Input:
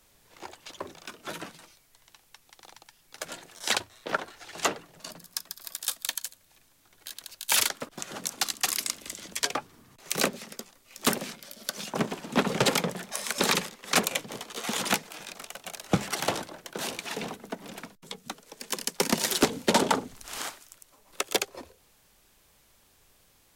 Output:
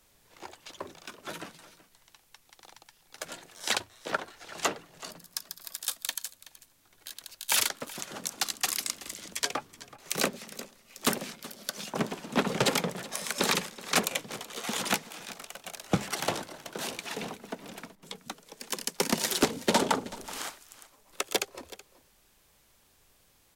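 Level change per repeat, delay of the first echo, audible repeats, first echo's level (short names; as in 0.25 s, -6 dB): no steady repeat, 0.376 s, 1, -18.0 dB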